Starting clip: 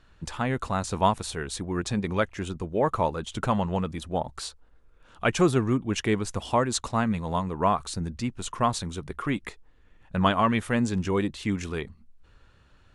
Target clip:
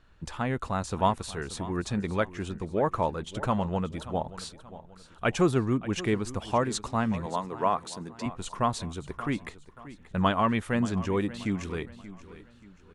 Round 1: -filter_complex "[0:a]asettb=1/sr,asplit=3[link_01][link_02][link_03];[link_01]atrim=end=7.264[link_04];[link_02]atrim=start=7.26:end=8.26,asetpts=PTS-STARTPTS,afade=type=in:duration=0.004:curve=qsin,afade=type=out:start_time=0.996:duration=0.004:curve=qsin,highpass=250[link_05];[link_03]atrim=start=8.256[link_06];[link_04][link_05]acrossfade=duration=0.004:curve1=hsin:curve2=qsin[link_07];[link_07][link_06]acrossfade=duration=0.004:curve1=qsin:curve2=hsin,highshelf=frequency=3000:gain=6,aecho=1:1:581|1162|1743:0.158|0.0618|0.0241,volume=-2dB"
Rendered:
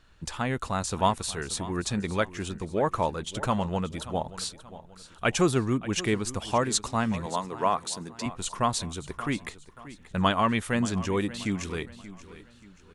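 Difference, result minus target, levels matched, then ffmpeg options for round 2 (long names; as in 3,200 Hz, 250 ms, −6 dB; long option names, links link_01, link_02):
8,000 Hz band +7.5 dB
-filter_complex "[0:a]asettb=1/sr,asplit=3[link_01][link_02][link_03];[link_01]atrim=end=7.264[link_04];[link_02]atrim=start=7.26:end=8.26,asetpts=PTS-STARTPTS,afade=type=in:duration=0.004:curve=qsin,afade=type=out:start_time=0.996:duration=0.004:curve=qsin,highpass=250[link_05];[link_03]atrim=start=8.256[link_06];[link_04][link_05]acrossfade=duration=0.004:curve1=hsin:curve2=qsin[link_07];[link_07][link_06]acrossfade=duration=0.004:curve1=qsin:curve2=hsin,highshelf=frequency=3000:gain=-3.5,aecho=1:1:581|1162|1743:0.158|0.0618|0.0241,volume=-2dB"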